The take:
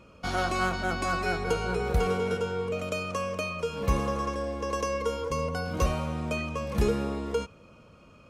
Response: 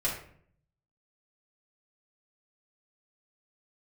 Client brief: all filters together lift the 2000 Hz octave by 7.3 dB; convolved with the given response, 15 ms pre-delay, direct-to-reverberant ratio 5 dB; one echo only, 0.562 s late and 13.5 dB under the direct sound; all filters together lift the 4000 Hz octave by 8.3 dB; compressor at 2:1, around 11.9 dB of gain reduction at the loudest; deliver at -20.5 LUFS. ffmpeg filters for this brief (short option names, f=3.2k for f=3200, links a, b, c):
-filter_complex "[0:a]equalizer=f=2k:t=o:g=8.5,equalizer=f=4k:t=o:g=8,acompressor=threshold=-42dB:ratio=2,aecho=1:1:562:0.211,asplit=2[a][b];[1:a]atrim=start_sample=2205,adelay=15[c];[b][c]afir=irnorm=-1:irlink=0,volume=-12dB[d];[a][d]amix=inputs=2:normalize=0,volume=15.5dB"